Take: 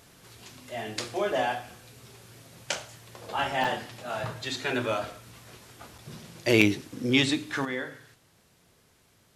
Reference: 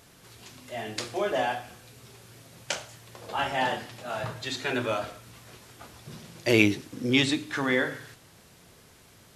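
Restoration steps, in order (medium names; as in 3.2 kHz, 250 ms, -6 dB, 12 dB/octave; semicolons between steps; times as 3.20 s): interpolate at 3.64/5.98/6.61 s, 5.4 ms; gain correction +8 dB, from 7.65 s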